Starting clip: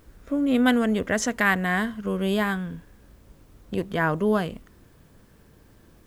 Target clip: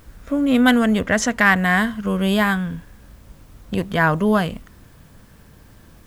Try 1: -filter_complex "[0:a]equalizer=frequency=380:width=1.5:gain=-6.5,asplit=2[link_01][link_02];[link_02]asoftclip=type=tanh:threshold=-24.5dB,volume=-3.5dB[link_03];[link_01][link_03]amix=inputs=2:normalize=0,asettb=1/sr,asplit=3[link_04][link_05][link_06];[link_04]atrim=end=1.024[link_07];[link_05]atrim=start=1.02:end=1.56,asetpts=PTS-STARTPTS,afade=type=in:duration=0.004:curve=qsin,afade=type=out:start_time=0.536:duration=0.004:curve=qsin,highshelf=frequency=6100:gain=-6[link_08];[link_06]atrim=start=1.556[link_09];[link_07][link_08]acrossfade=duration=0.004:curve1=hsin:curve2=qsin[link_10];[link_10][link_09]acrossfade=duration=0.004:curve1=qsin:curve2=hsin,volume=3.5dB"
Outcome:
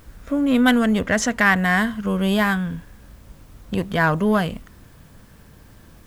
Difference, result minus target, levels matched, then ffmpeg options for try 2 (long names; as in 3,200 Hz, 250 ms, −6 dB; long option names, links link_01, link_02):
soft clipping: distortion +9 dB
-filter_complex "[0:a]equalizer=frequency=380:width=1.5:gain=-6.5,asplit=2[link_01][link_02];[link_02]asoftclip=type=tanh:threshold=-14.5dB,volume=-3.5dB[link_03];[link_01][link_03]amix=inputs=2:normalize=0,asettb=1/sr,asplit=3[link_04][link_05][link_06];[link_04]atrim=end=1.024[link_07];[link_05]atrim=start=1.02:end=1.56,asetpts=PTS-STARTPTS,afade=type=in:duration=0.004:curve=qsin,afade=type=out:start_time=0.536:duration=0.004:curve=qsin,highshelf=frequency=6100:gain=-6[link_08];[link_06]atrim=start=1.556[link_09];[link_07][link_08]acrossfade=duration=0.004:curve1=hsin:curve2=qsin[link_10];[link_10][link_09]acrossfade=duration=0.004:curve1=qsin:curve2=hsin,volume=3.5dB"